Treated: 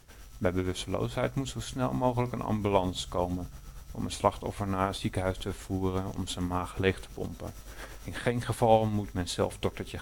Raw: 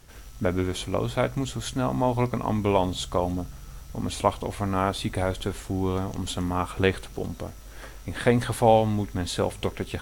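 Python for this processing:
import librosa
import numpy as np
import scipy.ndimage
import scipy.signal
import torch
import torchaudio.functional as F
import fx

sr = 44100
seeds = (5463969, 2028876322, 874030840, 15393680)

y = x * (1.0 - 0.52 / 2.0 + 0.52 / 2.0 * np.cos(2.0 * np.pi * 8.7 * (np.arange(len(x)) / sr)))
y = fx.band_squash(y, sr, depth_pct=40, at=(7.47, 8.43))
y = F.gain(torch.from_numpy(y), -2.0).numpy()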